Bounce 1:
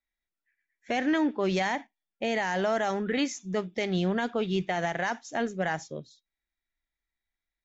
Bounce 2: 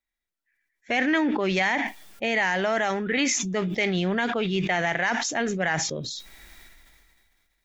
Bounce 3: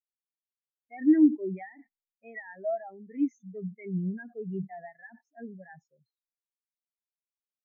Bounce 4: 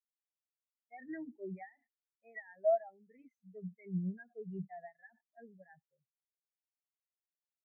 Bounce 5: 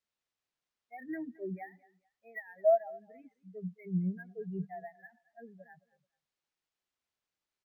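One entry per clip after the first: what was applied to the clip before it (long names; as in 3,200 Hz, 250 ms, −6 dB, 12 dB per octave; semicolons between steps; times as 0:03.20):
dynamic equaliser 2,200 Hz, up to +8 dB, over −47 dBFS, Q 1.3; level that may fall only so fast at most 26 dB per second; level +1 dB
every bin expanded away from the loudest bin 4 to 1
high-frequency loss of the air 240 metres; phaser with its sweep stopped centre 1,100 Hz, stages 6; expander for the loud parts 1.5 to 1, over −57 dBFS; level +3 dB
repeating echo 217 ms, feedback 25%, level −21.5 dB; linearly interpolated sample-rate reduction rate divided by 3×; level +4.5 dB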